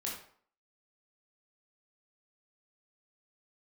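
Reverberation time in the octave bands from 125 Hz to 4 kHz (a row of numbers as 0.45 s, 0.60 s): 0.45 s, 0.50 s, 0.55 s, 0.55 s, 0.45 s, 0.40 s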